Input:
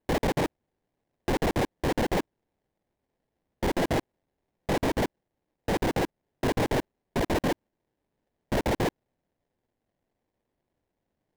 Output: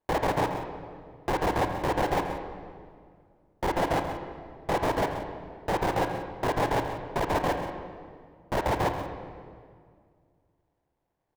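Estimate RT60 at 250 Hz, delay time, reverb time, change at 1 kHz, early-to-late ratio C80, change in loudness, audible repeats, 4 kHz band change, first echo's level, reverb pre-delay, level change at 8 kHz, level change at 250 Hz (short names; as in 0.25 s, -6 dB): 2.5 s, 0.133 s, 2.1 s, +5.0 dB, 6.0 dB, 0.0 dB, 2, -2.0 dB, -12.0 dB, 29 ms, -3.0 dB, -3.5 dB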